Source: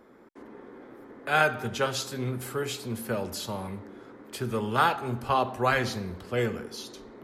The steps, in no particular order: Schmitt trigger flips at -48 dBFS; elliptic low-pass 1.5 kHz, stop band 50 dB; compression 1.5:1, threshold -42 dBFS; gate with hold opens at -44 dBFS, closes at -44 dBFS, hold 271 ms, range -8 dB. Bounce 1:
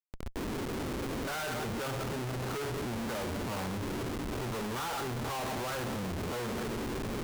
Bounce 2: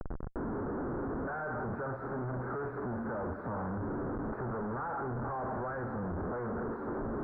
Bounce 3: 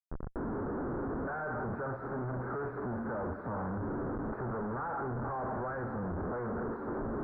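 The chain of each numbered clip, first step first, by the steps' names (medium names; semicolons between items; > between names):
gate with hold > elliptic low-pass > Schmitt trigger > compression; Schmitt trigger > gate with hold > elliptic low-pass > compression; gate with hold > Schmitt trigger > compression > elliptic low-pass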